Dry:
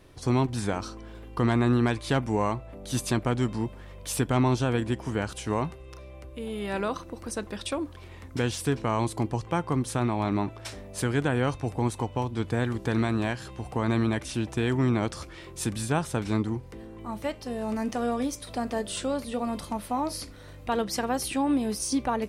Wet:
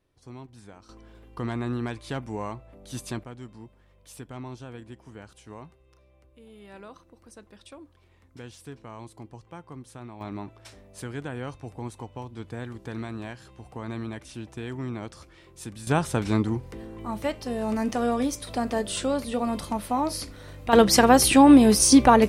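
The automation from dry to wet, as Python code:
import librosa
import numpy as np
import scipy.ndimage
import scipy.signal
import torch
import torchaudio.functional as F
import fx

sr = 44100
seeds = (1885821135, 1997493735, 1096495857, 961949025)

y = fx.gain(x, sr, db=fx.steps((0.0, -19.0), (0.89, -7.0), (3.24, -15.5), (10.21, -9.0), (15.87, 3.0), (20.73, 12.0)))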